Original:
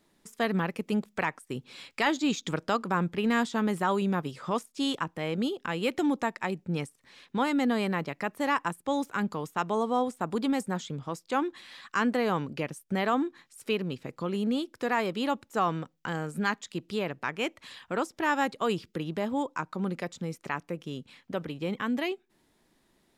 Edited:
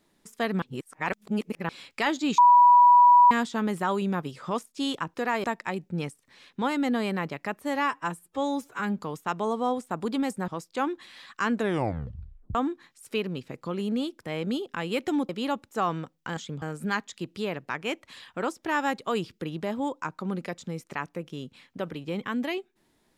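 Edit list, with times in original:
0.62–1.69 reverse
2.38–3.31 bleep 976 Hz -12 dBFS
5.14–6.2 swap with 14.78–15.08
8.37–9.29 stretch 1.5×
10.78–11.03 move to 16.16
12.05 tape stop 1.05 s

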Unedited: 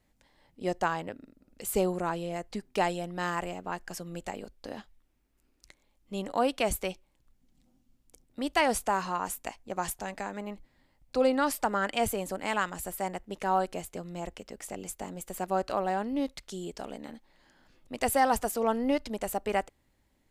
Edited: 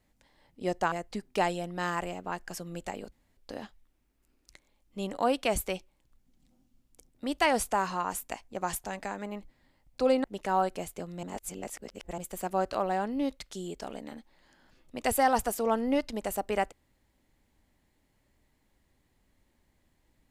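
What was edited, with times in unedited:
0.92–2.32 cut
4.52 insert room tone 0.25 s
11.39–13.21 cut
14.2–15.15 reverse

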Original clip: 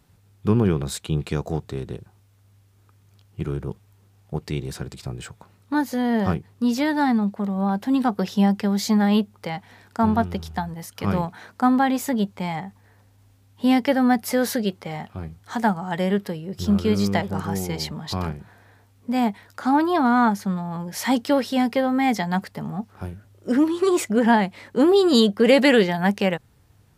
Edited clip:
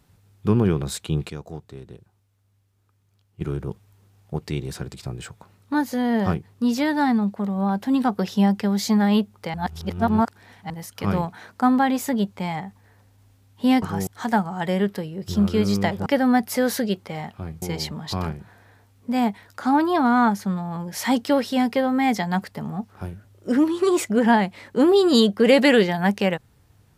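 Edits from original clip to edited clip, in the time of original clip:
1.3–3.41 gain -9.5 dB
9.54–10.7 reverse
13.82–15.38 swap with 17.37–17.62

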